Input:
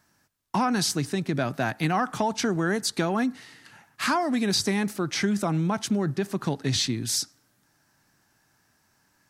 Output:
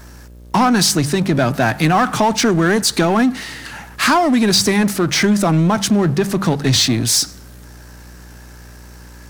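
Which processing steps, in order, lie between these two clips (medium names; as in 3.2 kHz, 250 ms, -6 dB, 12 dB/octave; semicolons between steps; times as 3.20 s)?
mains buzz 60 Hz, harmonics 10, -61 dBFS -7 dB/octave; de-hum 48.67 Hz, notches 4; power-law waveshaper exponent 0.7; trim +8 dB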